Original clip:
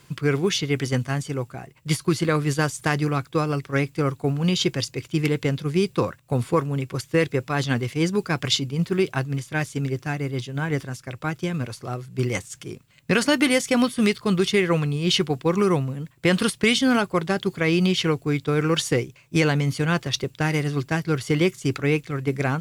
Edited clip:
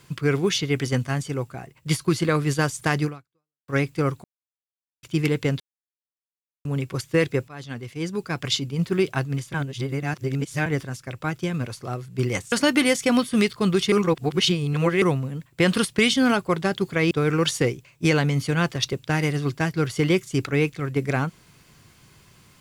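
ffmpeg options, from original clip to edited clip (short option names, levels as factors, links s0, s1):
-filter_complex "[0:a]asplit=13[s0][s1][s2][s3][s4][s5][s6][s7][s8][s9][s10][s11][s12];[s0]atrim=end=3.68,asetpts=PTS-STARTPTS,afade=t=out:st=3.05:d=0.63:c=exp[s13];[s1]atrim=start=3.68:end=4.24,asetpts=PTS-STARTPTS,afade=t=in:d=0.004:c=hsin,afade=t=out:st=0.556:d=0.004:c=hsin[s14];[s2]atrim=start=4.24:end=5.03,asetpts=PTS-STARTPTS,volume=0[s15];[s3]atrim=start=5.03:end=5.6,asetpts=PTS-STARTPTS,afade=t=in:d=0.004:c=hsin,afade=t=out:st=0.566:d=0.004:c=hsin[s16];[s4]atrim=start=5.6:end=6.65,asetpts=PTS-STARTPTS,volume=0[s17];[s5]atrim=start=6.65:end=7.48,asetpts=PTS-STARTPTS,afade=t=in:d=0.004:c=hsin,afade=t=out:st=0.826:d=0.004:c=hsin:silence=0.133352[s18];[s6]atrim=start=7.48:end=9.542,asetpts=PTS-STARTPTS,afade=t=in:d=1.44:silence=0.133352[s19];[s7]atrim=start=9.538:end=10.662,asetpts=PTS-STARTPTS,areverse[s20];[s8]atrim=start=10.658:end=12.522[s21];[s9]atrim=start=13.168:end=14.572[s22];[s10]atrim=start=14.568:end=15.672,asetpts=PTS-STARTPTS,areverse[s23];[s11]atrim=start=15.668:end=17.762[s24];[s12]atrim=start=18.418[s25];[s13][s14][s15][s16][s17][s18][s19]concat=n=7:v=0:a=1[s26];[s26][s20]acrossfade=d=0.004:c1=hsin:c2=hsin[s27];[s27][s21]acrossfade=d=0.004:c1=hsin:c2=hsin[s28];[s28][s22]acrossfade=d=0.004:c1=hsin:c2=hsin[s29];[s29][s23]acrossfade=d=0.004:c1=hsin:c2=hsin[s30];[s30][s24]acrossfade=d=0.004:c1=hsin:c2=hsin[s31];[s31][s25]acrossfade=d=0.004:c1=hsin:c2=hsin"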